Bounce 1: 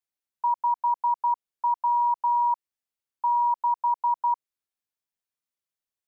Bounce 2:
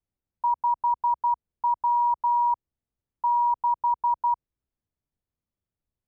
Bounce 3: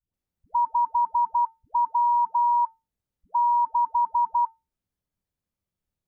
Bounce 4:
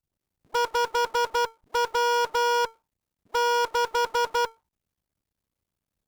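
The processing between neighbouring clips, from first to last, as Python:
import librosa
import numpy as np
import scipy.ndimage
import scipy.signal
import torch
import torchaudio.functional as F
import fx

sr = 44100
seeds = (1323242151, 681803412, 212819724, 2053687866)

y1 = fx.tilt_eq(x, sr, slope=-6.0)
y2 = fx.comb_fb(y1, sr, f0_hz=180.0, decay_s=0.25, harmonics='odd', damping=0.0, mix_pct=60)
y2 = fx.dispersion(y2, sr, late='highs', ms=138.0, hz=480.0)
y2 = y2 * librosa.db_to_amplitude(8.5)
y3 = fx.cycle_switch(y2, sr, every=2, mode='muted')
y3 = fx.cheby_harmonics(y3, sr, harmonics=(2, 5, 8), levels_db=(-27, -17, -19), full_scale_db=-16.0)
y3 = y3 * librosa.db_to_amplitude(1.5)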